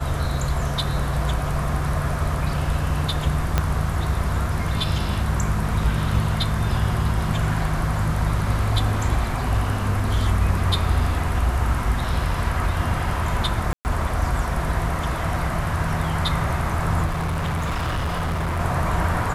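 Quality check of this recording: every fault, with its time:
3.58 s: pop -5 dBFS
13.73–13.85 s: dropout 119 ms
17.05–18.61 s: clipped -21 dBFS

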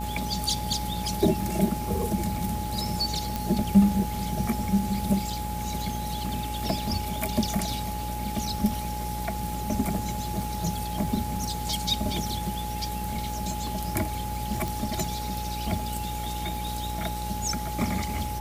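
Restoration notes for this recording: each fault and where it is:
buzz 60 Hz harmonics 16 -34 dBFS
crackle 26 per s -35 dBFS
whine 840 Hz -34 dBFS
3.36 s: pop
14.68 s: pop

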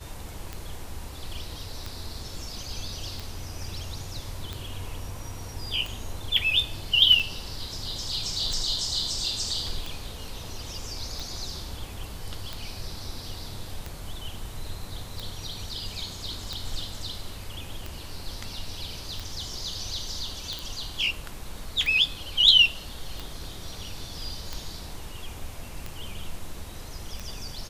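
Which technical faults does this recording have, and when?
tick 45 rpm -19 dBFS
20.59 s: pop

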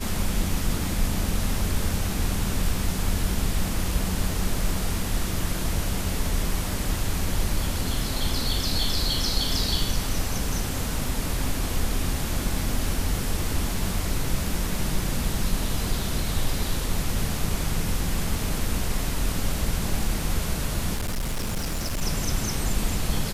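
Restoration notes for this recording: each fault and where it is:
20.96–22.02 s: clipped -23.5 dBFS

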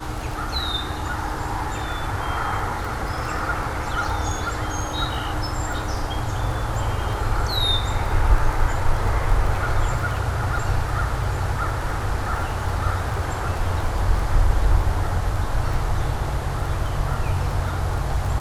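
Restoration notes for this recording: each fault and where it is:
crackle 10 per s -26 dBFS

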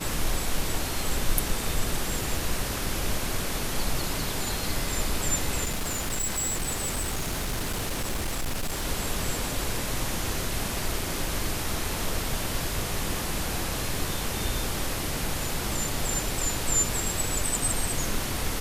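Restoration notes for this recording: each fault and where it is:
5.64–8.84 s: clipped -25 dBFS

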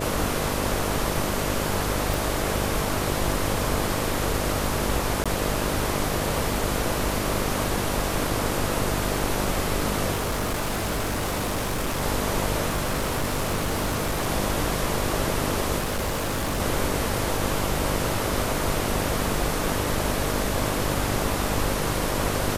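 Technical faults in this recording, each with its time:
buzz 50 Hz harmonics 13 -30 dBFS
2.14 s: pop
5.24–5.26 s: dropout 16 ms
10.13–12.03 s: clipped -22.5 dBFS
12.68–14.29 s: clipped -21 dBFS
15.78–16.61 s: clipped -22.5 dBFS

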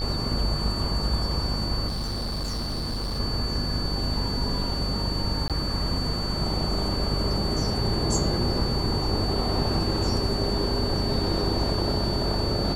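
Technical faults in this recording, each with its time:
buzz 50 Hz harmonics 29 -30 dBFS
whine 4.5 kHz -31 dBFS
1.87–3.20 s: clipped -26 dBFS
5.48–5.50 s: dropout 17 ms

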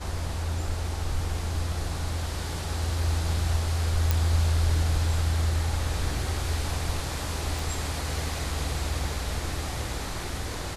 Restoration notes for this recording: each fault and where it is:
4.11 s: pop
7.59 s: pop

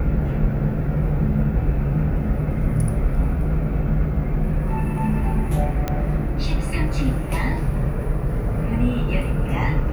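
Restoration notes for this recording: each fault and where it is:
5.88 s: pop -10 dBFS

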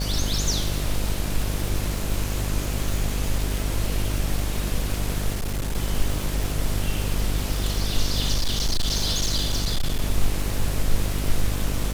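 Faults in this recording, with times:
buzz 50 Hz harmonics 14 -27 dBFS
crackle 580 per s -28 dBFS
5.34–5.75 s: clipped -22.5 dBFS
8.33–10.02 s: clipped -18 dBFS

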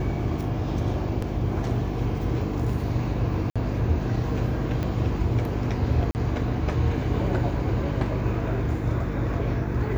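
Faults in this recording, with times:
hum 50 Hz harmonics 6 -30 dBFS
1.22 s: dropout 3.8 ms
3.50–3.56 s: dropout 56 ms
4.83 s: pop -17 dBFS
6.11–6.15 s: dropout 39 ms

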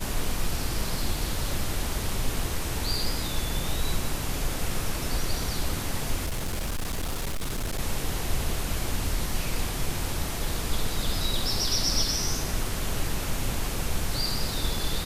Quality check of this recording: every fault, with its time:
6.25–7.80 s: clipped -25.5 dBFS

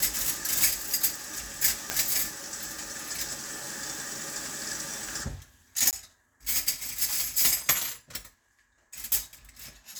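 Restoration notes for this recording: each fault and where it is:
1.90 s: pop -8 dBFS
5.91–5.93 s: dropout 18 ms

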